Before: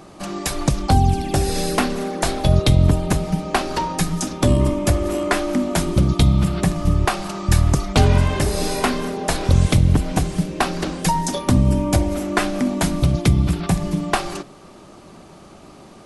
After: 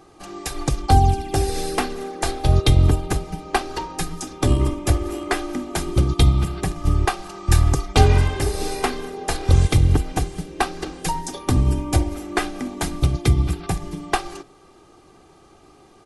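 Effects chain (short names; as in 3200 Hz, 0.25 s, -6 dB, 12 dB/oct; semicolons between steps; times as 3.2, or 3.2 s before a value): comb 2.5 ms, depth 55%; upward expander 1.5:1, over -25 dBFS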